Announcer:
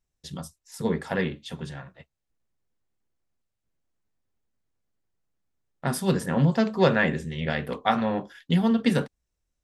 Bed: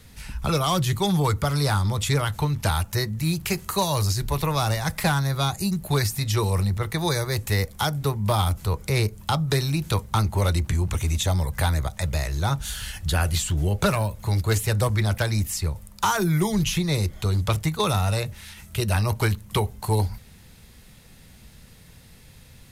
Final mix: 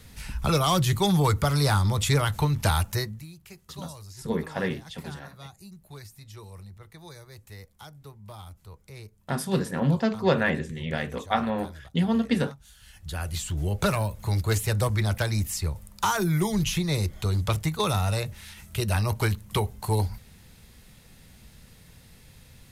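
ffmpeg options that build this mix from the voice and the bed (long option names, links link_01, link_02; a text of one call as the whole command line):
ffmpeg -i stem1.wav -i stem2.wav -filter_complex "[0:a]adelay=3450,volume=-2dB[link_01];[1:a]volume=19dB,afade=type=out:start_time=2.84:duration=0.43:silence=0.0841395,afade=type=in:start_time=12.79:duration=1.12:silence=0.112202[link_02];[link_01][link_02]amix=inputs=2:normalize=0" out.wav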